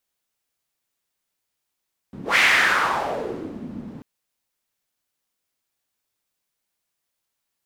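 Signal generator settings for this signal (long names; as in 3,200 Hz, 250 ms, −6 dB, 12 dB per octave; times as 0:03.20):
pass-by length 1.89 s, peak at 0:00.24, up 0.15 s, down 1.45 s, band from 210 Hz, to 2,100 Hz, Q 3, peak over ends 19.5 dB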